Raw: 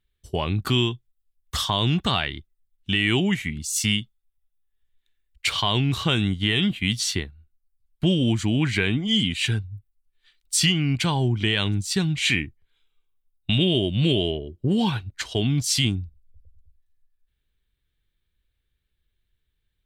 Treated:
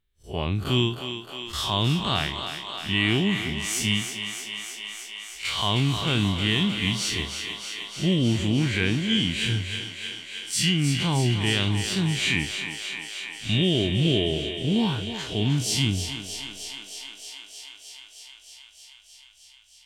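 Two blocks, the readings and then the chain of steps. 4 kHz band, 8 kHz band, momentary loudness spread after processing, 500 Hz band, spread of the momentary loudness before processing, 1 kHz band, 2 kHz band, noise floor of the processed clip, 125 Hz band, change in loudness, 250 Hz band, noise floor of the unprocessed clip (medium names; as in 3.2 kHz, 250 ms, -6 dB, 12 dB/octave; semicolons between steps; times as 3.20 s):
0.0 dB, -1.5 dB, 13 LU, -1.0 dB, 9 LU, -1.5 dB, -0.5 dB, -52 dBFS, -1.0 dB, -2.0 dB, -1.0 dB, -76 dBFS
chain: spectral blur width 88 ms; on a send: thinning echo 311 ms, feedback 82%, high-pass 360 Hz, level -7.5 dB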